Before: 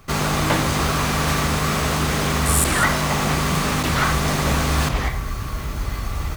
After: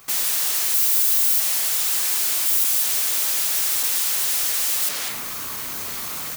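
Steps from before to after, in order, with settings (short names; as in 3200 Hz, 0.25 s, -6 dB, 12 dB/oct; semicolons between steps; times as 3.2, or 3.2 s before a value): 0.74–1.4 tone controls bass +4 dB, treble +10 dB; limiter -10.5 dBFS, peak gain reduction 6 dB; resonator 150 Hz, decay 0.66 s, harmonics all, mix 60%; wavefolder -34 dBFS; RIAA curve recording; gain +5.5 dB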